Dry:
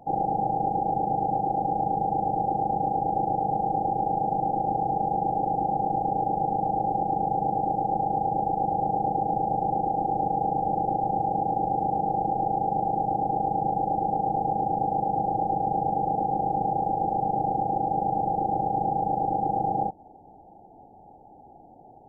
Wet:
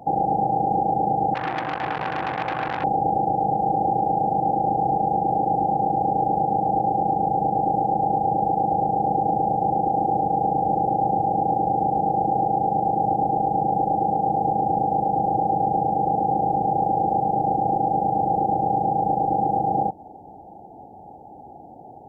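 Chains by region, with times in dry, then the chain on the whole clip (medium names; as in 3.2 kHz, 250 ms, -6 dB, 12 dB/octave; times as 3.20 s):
1.34–2.84 s: hum notches 50/100/150/200/250/300/350/400/450 Hz + comb of notches 200 Hz + transformer saturation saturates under 1.9 kHz
whole clip: high-pass 56 Hz; peak limiter -20.5 dBFS; trim +7.5 dB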